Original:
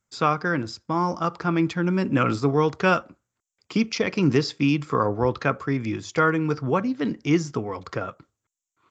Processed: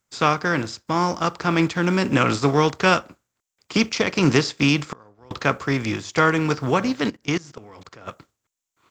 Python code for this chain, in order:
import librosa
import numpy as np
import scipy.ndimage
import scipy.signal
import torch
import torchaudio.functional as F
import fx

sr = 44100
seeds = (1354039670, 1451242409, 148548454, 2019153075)

y = fx.spec_flatten(x, sr, power=0.69)
y = fx.gate_flip(y, sr, shuts_db=-20.0, range_db=-30, at=(4.85, 5.31))
y = fx.level_steps(y, sr, step_db=23, at=(7.09, 8.06), fade=0.02)
y = y * 10.0 ** (2.5 / 20.0)